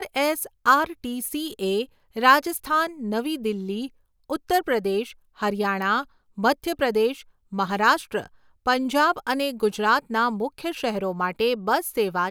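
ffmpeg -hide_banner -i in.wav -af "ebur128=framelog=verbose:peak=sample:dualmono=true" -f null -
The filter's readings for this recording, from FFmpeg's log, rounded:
Integrated loudness:
  I:         -20.8 LUFS
  Threshold: -31.1 LUFS
Loudness range:
  LRA:         3.2 LU
  Threshold: -41.2 LUFS
  LRA low:   -23.1 LUFS
  LRA high:  -19.9 LUFS
Sample peak:
  Peak:       -3.5 dBFS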